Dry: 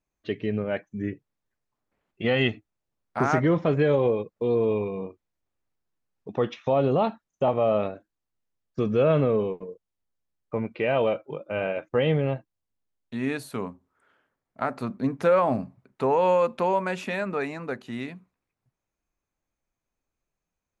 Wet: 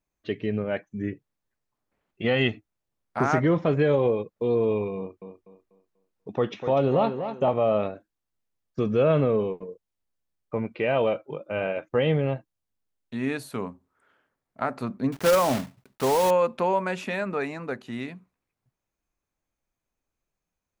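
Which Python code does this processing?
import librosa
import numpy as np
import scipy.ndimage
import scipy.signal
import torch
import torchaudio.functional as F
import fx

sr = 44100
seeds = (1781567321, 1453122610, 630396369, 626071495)

y = fx.echo_tape(x, sr, ms=245, feedback_pct=34, wet_db=-7.0, lp_hz=5400.0, drive_db=15.0, wow_cents=13, at=(4.97, 7.53))
y = fx.block_float(y, sr, bits=3, at=(15.12, 16.31))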